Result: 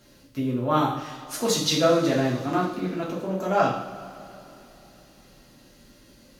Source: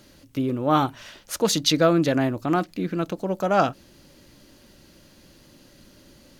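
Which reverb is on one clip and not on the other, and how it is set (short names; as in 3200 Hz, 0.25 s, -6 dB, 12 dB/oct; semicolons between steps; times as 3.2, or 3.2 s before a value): two-slope reverb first 0.54 s, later 3.4 s, from -18 dB, DRR -5.5 dB; gain -7.5 dB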